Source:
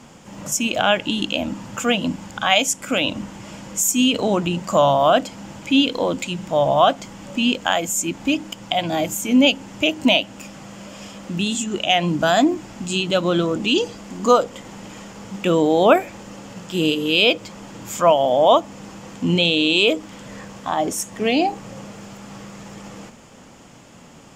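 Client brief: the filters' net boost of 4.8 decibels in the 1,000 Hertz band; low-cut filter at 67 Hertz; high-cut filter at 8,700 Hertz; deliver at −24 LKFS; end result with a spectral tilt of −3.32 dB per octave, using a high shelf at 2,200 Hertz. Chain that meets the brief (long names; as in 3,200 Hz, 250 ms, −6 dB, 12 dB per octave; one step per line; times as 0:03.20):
high-pass filter 67 Hz
low-pass filter 8,700 Hz
parametric band 1,000 Hz +8 dB
high-shelf EQ 2,200 Hz −6.5 dB
level −6 dB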